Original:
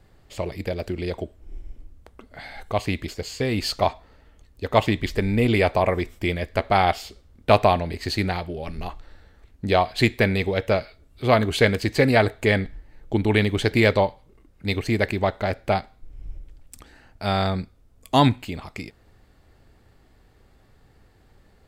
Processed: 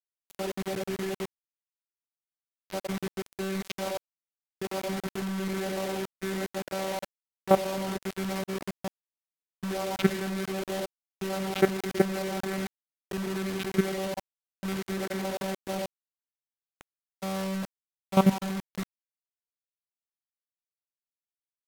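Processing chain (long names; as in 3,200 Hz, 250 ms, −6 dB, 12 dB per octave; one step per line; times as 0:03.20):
in parallel at +1 dB: downward compressor 4 to 1, threshold −37 dBFS, peak gain reduction 22 dB
on the sum: channel vocoder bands 8, saw 228 Hz
low-shelf EQ 230 Hz −6 dB
on a send at −7.5 dB: convolution reverb RT60 1.1 s, pre-delay 64 ms
on the sum: output level in coarse steps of 16 dB
bit reduction 6 bits
pitch shifter −3 semitones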